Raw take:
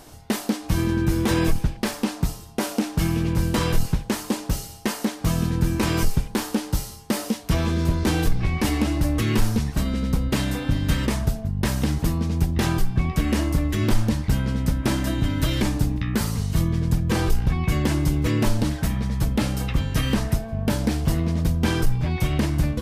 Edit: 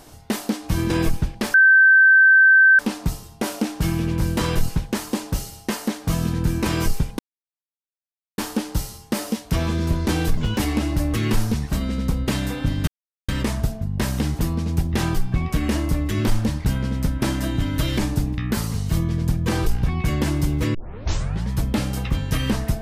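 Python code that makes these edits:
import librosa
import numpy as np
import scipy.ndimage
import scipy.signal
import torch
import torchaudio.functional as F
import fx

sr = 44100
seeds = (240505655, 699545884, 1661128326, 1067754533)

y = fx.edit(x, sr, fx.cut(start_s=0.9, length_s=0.42),
    fx.insert_tone(at_s=1.96, length_s=1.25, hz=1550.0, db=-9.0),
    fx.insert_silence(at_s=6.36, length_s=1.19),
    fx.speed_span(start_s=8.35, length_s=0.27, speed=1.32),
    fx.insert_silence(at_s=10.92, length_s=0.41),
    fx.tape_start(start_s=18.38, length_s=0.76), tone=tone)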